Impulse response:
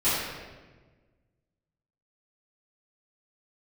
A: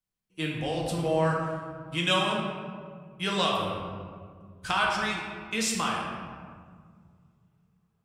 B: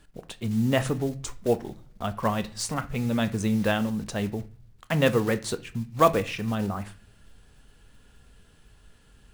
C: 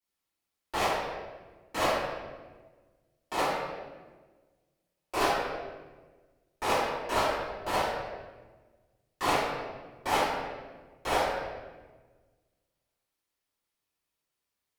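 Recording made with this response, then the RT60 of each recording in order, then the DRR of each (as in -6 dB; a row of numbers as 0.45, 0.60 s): C; 1.9 s, not exponential, 1.3 s; -3.0, 11.0, -16.0 dB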